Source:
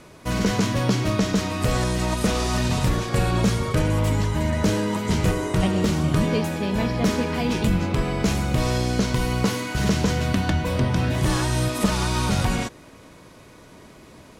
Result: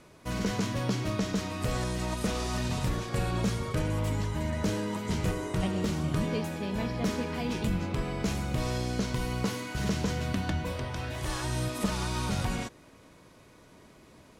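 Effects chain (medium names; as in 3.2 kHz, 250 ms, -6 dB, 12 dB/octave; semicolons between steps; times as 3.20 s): 10.72–11.44 s: peaking EQ 190 Hz -11 dB 1.5 oct; trim -8.5 dB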